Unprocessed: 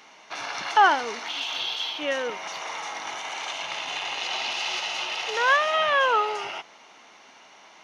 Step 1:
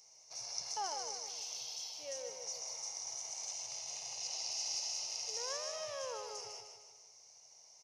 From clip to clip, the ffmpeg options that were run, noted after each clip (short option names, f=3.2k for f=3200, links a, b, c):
-filter_complex "[0:a]firequalizer=gain_entry='entry(120,0);entry(240,-27);entry(490,-8);entry(1500,-27);entry(2200,-17);entry(3400,-20);entry(5200,10);entry(11000,2)':delay=0.05:min_phase=1,asplit=2[a][b];[b]aecho=0:1:154|308|462|616|770|924:0.473|0.222|0.105|0.0491|0.0231|0.0109[c];[a][c]amix=inputs=2:normalize=0,volume=-8dB"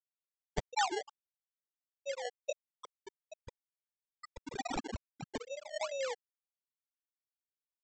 -af "afftfilt=real='re*gte(hypot(re,im),0.0562)':imag='im*gte(hypot(re,im),0.0562)':win_size=1024:overlap=0.75,highshelf=f=3.9k:g=8,aresample=16000,acrusher=samples=9:mix=1:aa=0.000001:lfo=1:lforange=9:lforate=2.3,aresample=44100,volume=9dB"